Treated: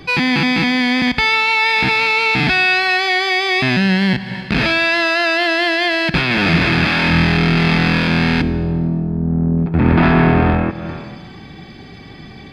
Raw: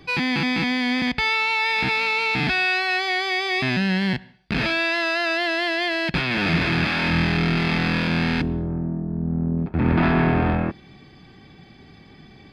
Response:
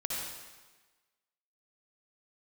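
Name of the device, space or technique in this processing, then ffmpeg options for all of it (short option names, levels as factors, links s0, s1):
ducked reverb: -filter_complex "[0:a]asplit=3[s0][s1][s2];[1:a]atrim=start_sample=2205[s3];[s1][s3]afir=irnorm=-1:irlink=0[s4];[s2]apad=whole_len=552140[s5];[s4][s5]sidechaincompress=threshold=0.00794:ratio=3:attack=37:release=155,volume=0.668[s6];[s0][s6]amix=inputs=2:normalize=0,volume=2"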